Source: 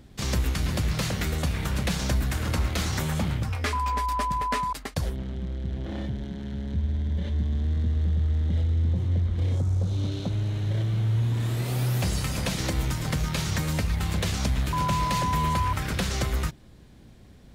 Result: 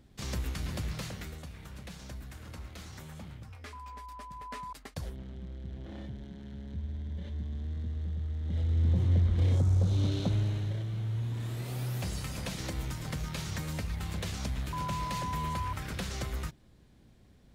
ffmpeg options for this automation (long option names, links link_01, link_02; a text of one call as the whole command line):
ffmpeg -i in.wav -af "volume=9dB,afade=type=out:start_time=0.83:duration=0.63:silence=0.334965,afade=type=in:start_time=4.3:duration=0.68:silence=0.398107,afade=type=in:start_time=8.41:duration=0.59:silence=0.316228,afade=type=out:start_time=10.32:duration=0.47:silence=0.375837" out.wav